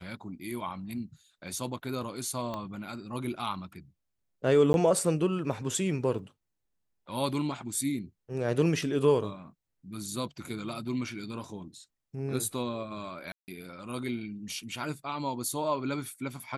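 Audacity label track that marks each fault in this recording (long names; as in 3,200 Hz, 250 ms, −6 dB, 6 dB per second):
2.540000	2.540000	click −23 dBFS
4.730000	4.740000	drop-out 11 ms
6.190000	6.190000	drop-out 3.4 ms
13.320000	13.480000	drop-out 159 ms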